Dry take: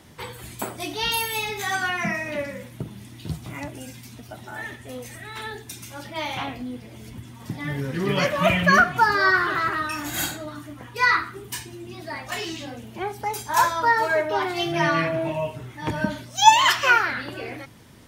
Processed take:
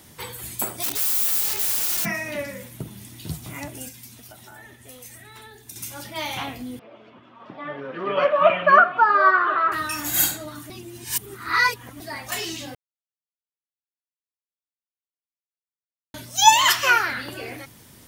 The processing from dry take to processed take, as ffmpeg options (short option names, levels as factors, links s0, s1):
-filter_complex "[0:a]asplit=3[s0][s1][s2];[s0]afade=t=out:st=0.82:d=0.02[s3];[s1]aeval=exprs='(mod(23.7*val(0)+1,2)-1)/23.7':c=same,afade=t=in:st=0.82:d=0.02,afade=t=out:st=2.04:d=0.02[s4];[s2]afade=t=in:st=2.04:d=0.02[s5];[s3][s4][s5]amix=inputs=3:normalize=0,asettb=1/sr,asplit=3[s6][s7][s8];[s6]atrim=end=3.884[s9];[s7]atrim=start=3.88:end=5.76,asetpts=PTS-STARTPTS,afade=t=in:d=0.004:c=qsin,afade=t=out:st=1.876:d=0.004:c=qsin,acrossover=split=86|950[s10][s11][s12];[s10]acompressor=threshold=0.001:ratio=4[s13];[s11]acompressor=threshold=0.00447:ratio=4[s14];[s12]acompressor=threshold=0.00398:ratio=4[s15];[s13][s14][s15]amix=inputs=3:normalize=0[s16];[s8]atrim=start=5.756[s17];[s9][s16]acrossfade=d=0.004:c1=hsin:c2=qsin[s18];[s18][s17]acrossfade=d=0.004:c1=qsin:c2=hsin,asettb=1/sr,asplit=3[s19][s20][s21];[s19]atrim=end=6.794[s22];[s20]atrim=start=6.79:end=9.72,asetpts=PTS-STARTPTS,afade=t=in:d=0.004:c=qsin,afade=t=out:st=2.926:d=0.004:c=qsin,highpass=360,equalizer=f=600:t=q:w=4:g=9,equalizer=f=1200:t=q:w=4:g=9,equalizer=f=2000:t=q:w=4:g=-8,lowpass=f=2700:w=0.5412,lowpass=f=2700:w=1.3066[s23];[s21]atrim=start=9.716[s24];[s22][s23]acrossfade=d=0.004:c1=hsin:c2=qsin[s25];[s25][s24]acrossfade=d=0.004:c1=qsin:c2=hsin,asplit=5[s26][s27][s28][s29][s30];[s26]atrim=end=10.702[s31];[s27]atrim=start=10.698:end=12.002,asetpts=PTS-STARTPTS,areverse[s32];[s28]atrim=start=11.998:end=12.75,asetpts=PTS-STARTPTS,afade=t=out:st=0.748:d=0.004:c=hsin[s33];[s29]atrim=start=12.75:end=16.14,asetpts=PTS-STARTPTS,volume=0[s34];[s30]atrim=start=16.14,asetpts=PTS-STARTPTS,afade=t=in:d=0.004:c=hsin[s35];[s31][s32]acrossfade=d=0.004:c1=hsin:c2=hsin[s36];[s33][s34][s35]concat=n=3:v=0:a=1[s37];[s36][s37]acrossfade=d=0.004:c1=hsin:c2=hsin,aemphasis=mode=production:type=50kf,volume=0.841"